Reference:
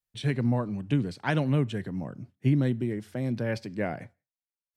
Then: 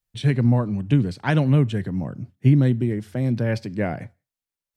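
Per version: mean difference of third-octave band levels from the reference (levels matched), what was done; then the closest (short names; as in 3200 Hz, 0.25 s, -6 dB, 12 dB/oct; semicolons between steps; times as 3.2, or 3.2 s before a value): 2.0 dB: low shelf 140 Hz +9 dB; gain +4 dB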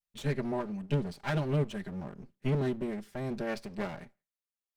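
5.0 dB: minimum comb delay 5 ms; gain -3.5 dB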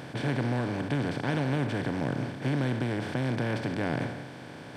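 10.5 dB: per-bin compression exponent 0.2; gain -8.5 dB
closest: first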